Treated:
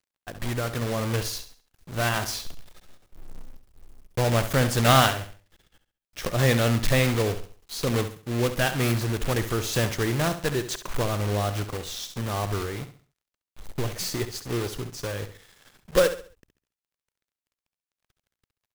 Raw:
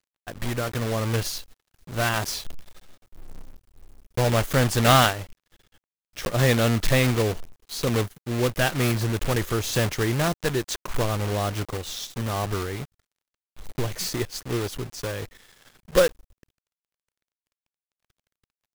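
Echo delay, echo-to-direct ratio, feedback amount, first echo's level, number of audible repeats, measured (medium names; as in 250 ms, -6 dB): 68 ms, -10.5 dB, 34%, -11.0 dB, 3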